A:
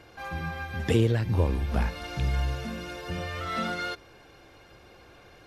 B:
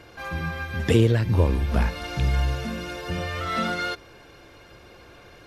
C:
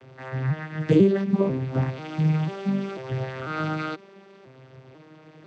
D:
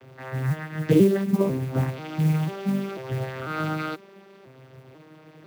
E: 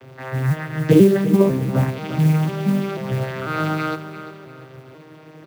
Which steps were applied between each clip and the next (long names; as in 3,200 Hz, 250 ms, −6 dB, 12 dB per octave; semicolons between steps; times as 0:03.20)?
notch filter 780 Hz, Q 14; level +4.5 dB
vocoder with an arpeggio as carrier minor triad, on C3, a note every 494 ms; level +2.5 dB
noise that follows the level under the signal 27 dB
repeating echo 347 ms, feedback 36%, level −12.5 dB; level +5.5 dB